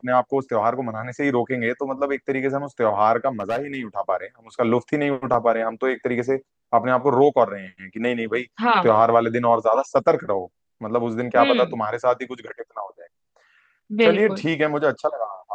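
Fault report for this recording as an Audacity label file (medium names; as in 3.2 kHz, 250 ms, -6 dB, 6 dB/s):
3.400000	3.760000	clipped -19 dBFS
5.340000	5.340000	dropout 3.5 ms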